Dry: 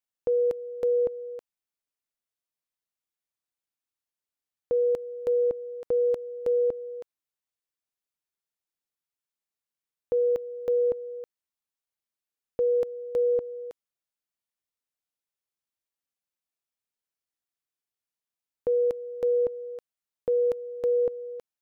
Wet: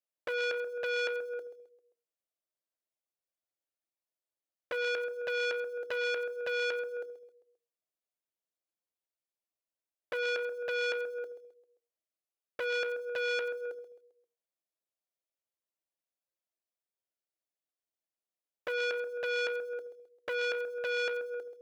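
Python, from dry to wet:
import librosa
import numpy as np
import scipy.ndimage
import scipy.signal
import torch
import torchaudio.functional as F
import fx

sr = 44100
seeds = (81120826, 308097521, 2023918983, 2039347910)

p1 = fx.highpass(x, sr, hz=110.0, slope=6)
p2 = fx.peak_eq(p1, sr, hz=670.0, db=8.0, octaves=0.27)
p3 = fx.hum_notches(p2, sr, base_hz=60, count=8)
p4 = fx.env_flanger(p3, sr, rest_ms=9.5, full_db=-25.5)
p5 = (np.mod(10.0 ** (34.0 / 20.0) * p4 + 1.0, 2.0) - 1.0) / 10.0 ** (34.0 / 20.0)
p6 = p4 + F.gain(torch.from_numpy(p5), -7.5).numpy()
p7 = fx.small_body(p6, sr, hz=(360.0, 530.0), ring_ms=25, db=9)
p8 = p7 + fx.echo_feedback(p7, sr, ms=132, feedback_pct=44, wet_db=-13, dry=0)
p9 = fx.transformer_sat(p8, sr, knee_hz=2000.0)
y = F.gain(torch.from_numpy(p9), -8.0).numpy()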